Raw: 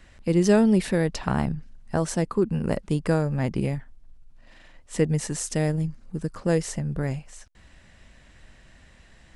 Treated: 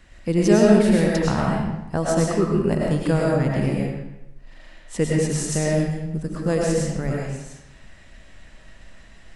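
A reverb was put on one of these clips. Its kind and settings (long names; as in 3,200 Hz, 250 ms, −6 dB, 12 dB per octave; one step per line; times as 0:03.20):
comb and all-pass reverb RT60 0.93 s, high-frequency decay 0.85×, pre-delay 65 ms, DRR −3 dB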